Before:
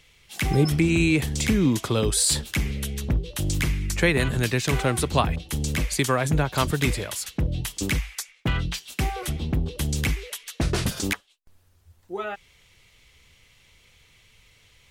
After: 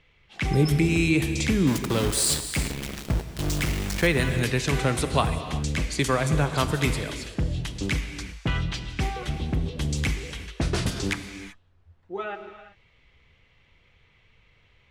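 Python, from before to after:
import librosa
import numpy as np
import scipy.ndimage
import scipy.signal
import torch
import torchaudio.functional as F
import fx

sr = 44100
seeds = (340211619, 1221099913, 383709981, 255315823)

y = fx.env_lowpass(x, sr, base_hz=2300.0, full_db=-17.5)
y = fx.sample_gate(y, sr, floor_db=-24.5, at=(1.67, 4.07))
y = fx.rev_gated(y, sr, seeds[0], gate_ms=410, shape='flat', drr_db=8.0)
y = F.gain(torch.from_numpy(y), -1.5).numpy()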